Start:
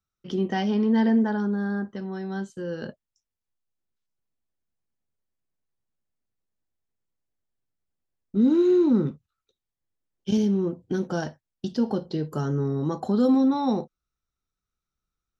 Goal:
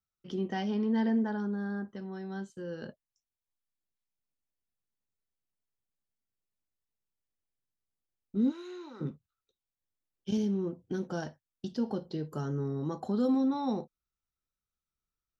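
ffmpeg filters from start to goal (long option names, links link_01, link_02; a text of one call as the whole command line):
ffmpeg -i in.wav -filter_complex "[0:a]asplit=3[link_01][link_02][link_03];[link_01]afade=type=out:start_time=8.5:duration=0.02[link_04];[link_02]highpass=980,afade=type=in:start_time=8.5:duration=0.02,afade=type=out:start_time=9:duration=0.02[link_05];[link_03]afade=type=in:start_time=9:duration=0.02[link_06];[link_04][link_05][link_06]amix=inputs=3:normalize=0,volume=-7.5dB" out.wav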